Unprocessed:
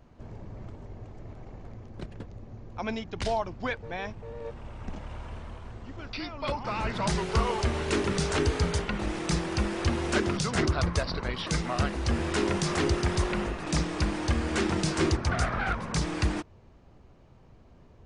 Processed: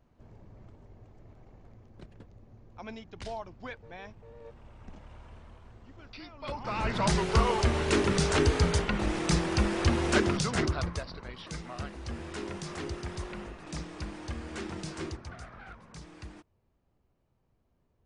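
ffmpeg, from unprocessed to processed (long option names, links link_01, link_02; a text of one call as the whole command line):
ffmpeg -i in.wav -af "volume=1.5dB,afade=type=in:start_time=6.39:duration=0.57:silence=0.266073,afade=type=out:start_time=10.18:duration=0.92:silence=0.237137,afade=type=out:start_time=14.94:duration=0.46:silence=0.421697" out.wav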